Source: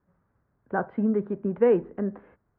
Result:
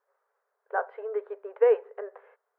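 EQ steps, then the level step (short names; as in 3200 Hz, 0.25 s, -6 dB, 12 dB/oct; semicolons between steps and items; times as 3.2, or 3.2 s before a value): brick-wall FIR high-pass 400 Hz; 0.0 dB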